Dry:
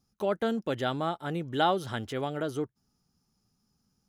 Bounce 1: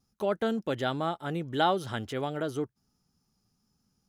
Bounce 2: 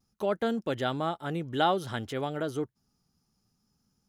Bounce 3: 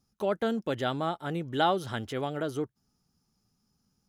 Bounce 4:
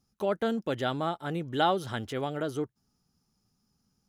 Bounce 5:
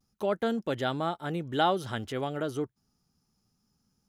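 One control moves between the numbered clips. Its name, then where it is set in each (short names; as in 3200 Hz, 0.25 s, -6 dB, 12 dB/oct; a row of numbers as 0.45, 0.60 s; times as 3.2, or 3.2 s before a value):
vibrato, rate: 1.4, 0.57, 10, 16, 0.31 Hz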